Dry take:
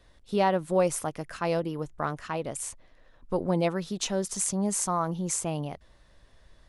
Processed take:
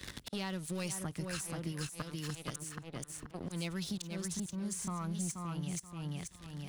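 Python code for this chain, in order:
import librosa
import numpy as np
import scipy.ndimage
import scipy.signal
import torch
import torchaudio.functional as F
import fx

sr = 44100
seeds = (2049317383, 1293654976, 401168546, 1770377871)

p1 = scipy.signal.sosfilt(scipy.signal.butter(2, 55.0, 'highpass', fs=sr, output='sos'), x)
p2 = fx.tone_stack(p1, sr, knobs='6-0-2')
p3 = fx.auto_swell(p2, sr, attack_ms=734.0)
p4 = fx.rider(p3, sr, range_db=5, speed_s=0.5)
p5 = p3 + (p4 * 10.0 ** (-0.5 / 20.0))
p6 = fx.leveller(p5, sr, passes=3)
p7 = p6 + fx.echo_feedback(p6, sr, ms=480, feedback_pct=17, wet_db=-4.5, dry=0)
p8 = fx.band_squash(p7, sr, depth_pct=100)
y = p8 * 10.0 ** (-1.0 / 20.0)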